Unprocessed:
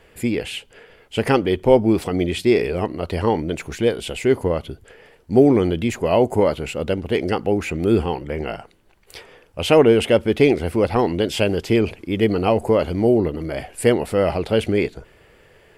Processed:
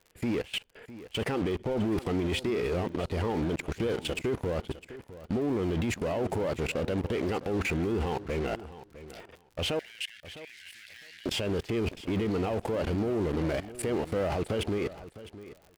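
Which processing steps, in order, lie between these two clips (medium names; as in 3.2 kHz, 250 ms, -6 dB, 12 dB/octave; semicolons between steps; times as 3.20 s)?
Chebyshev shaper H 3 -33 dB, 5 -31 dB, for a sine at -1.5 dBFS; in parallel at -9 dB: fuzz box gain 36 dB, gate -32 dBFS; 9.79–11.26 s: on the sum: elliptic high-pass 1.7 kHz, stop band 40 dB; level held to a coarse grid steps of 23 dB; peak limiter -19.5 dBFS, peak gain reduction 7.5 dB; treble shelf 6.4 kHz -8 dB; on a send: feedback delay 657 ms, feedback 15%, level -15.5 dB; on the sum: crackle 43 per s -40 dBFS; trim -3 dB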